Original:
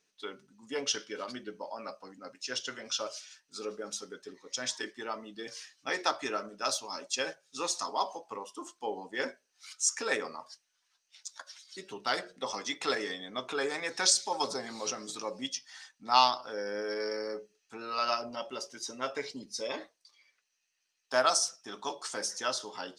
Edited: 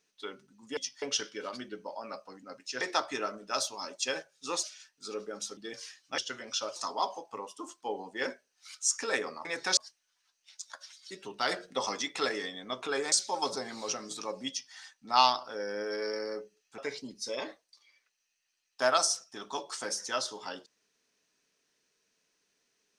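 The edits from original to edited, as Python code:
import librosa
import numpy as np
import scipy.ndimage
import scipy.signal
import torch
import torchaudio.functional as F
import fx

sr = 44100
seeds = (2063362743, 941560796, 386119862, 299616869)

y = fx.edit(x, sr, fx.swap(start_s=2.56, length_s=0.58, other_s=5.92, other_length_s=1.82),
    fx.cut(start_s=4.08, length_s=1.23),
    fx.clip_gain(start_s=12.15, length_s=0.53, db=3.5),
    fx.move(start_s=13.78, length_s=0.32, to_s=10.43),
    fx.duplicate(start_s=15.47, length_s=0.25, to_s=0.77),
    fx.cut(start_s=17.76, length_s=1.34), tone=tone)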